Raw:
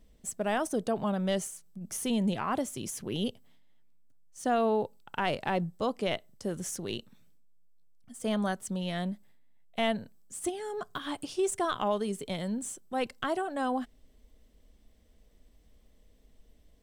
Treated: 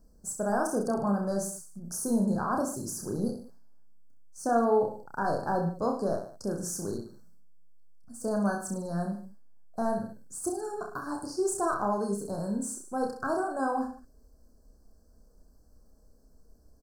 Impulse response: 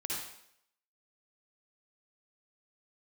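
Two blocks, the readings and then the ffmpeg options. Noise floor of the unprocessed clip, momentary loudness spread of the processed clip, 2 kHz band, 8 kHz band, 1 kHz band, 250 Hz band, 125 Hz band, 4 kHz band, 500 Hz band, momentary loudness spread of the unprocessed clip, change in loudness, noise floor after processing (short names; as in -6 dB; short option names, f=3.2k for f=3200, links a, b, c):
-62 dBFS, 10 LU, -2.0 dB, +2.0 dB, +2.0 dB, +2.0 dB, +1.5 dB, -12.0 dB, +2.0 dB, 8 LU, +1.5 dB, -59 dBFS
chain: -af "asuperstop=centerf=2700:order=20:qfactor=1,aecho=1:1:30|64.5|104.2|149.8|202.3:0.631|0.398|0.251|0.158|0.1"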